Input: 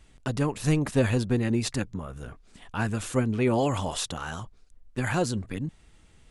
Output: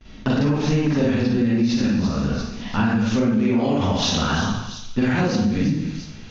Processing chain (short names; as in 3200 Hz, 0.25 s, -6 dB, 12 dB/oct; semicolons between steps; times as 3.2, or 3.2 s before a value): steep low-pass 6400 Hz 96 dB/oct; bell 220 Hz +11.5 dB 0.57 oct; gate with hold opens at -48 dBFS; on a send: thin delay 0.343 s, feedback 44%, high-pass 4100 Hz, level -10 dB; on the sum: reverb RT60 0.80 s, pre-delay 40 ms, DRR -8.5 dB; in parallel at +1 dB: limiter -11.5 dBFS, peak gain reduction 11 dB; on the sum: compressor 6:1, threshold -17 dBFS, peak gain reduction 14 dB